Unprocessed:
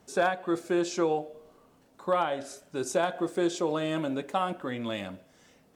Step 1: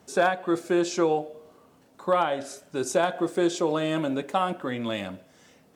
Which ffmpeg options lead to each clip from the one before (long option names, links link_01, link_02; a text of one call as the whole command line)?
ffmpeg -i in.wav -af "highpass=66,volume=3.5dB" out.wav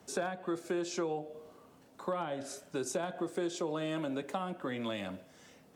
ffmpeg -i in.wav -filter_complex "[0:a]acrossover=split=120|310[link_01][link_02][link_03];[link_01]acompressor=threshold=-54dB:ratio=4[link_04];[link_02]acompressor=threshold=-40dB:ratio=4[link_05];[link_03]acompressor=threshold=-34dB:ratio=4[link_06];[link_04][link_05][link_06]amix=inputs=3:normalize=0,volume=-2dB" out.wav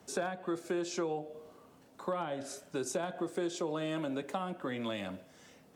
ffmpeg -i in.wav -af anull out.wav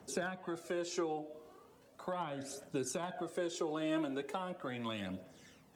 ffmpeg -i in.wav -af "aphaser=in_gain=1:out_gain=1:delay=3.2:decay=0.48:speed=0.38:type=triangular,volume=-3dB" out.wav